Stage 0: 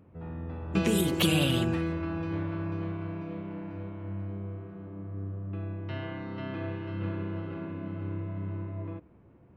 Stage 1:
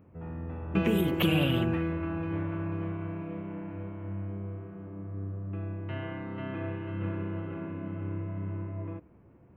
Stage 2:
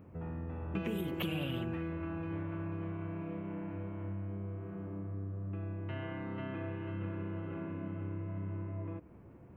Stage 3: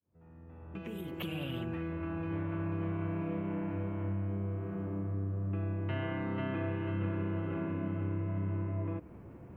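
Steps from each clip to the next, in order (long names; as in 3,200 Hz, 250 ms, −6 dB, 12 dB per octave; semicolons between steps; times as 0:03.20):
flat-topped bell 6,300 Hz −16 dB
downward compressor 2.5 to 1, threshold −42 dBFS, peak gain reduction 14 dB; level +2.5 dB
fade in at the beginning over 3.03 s; level +5 dB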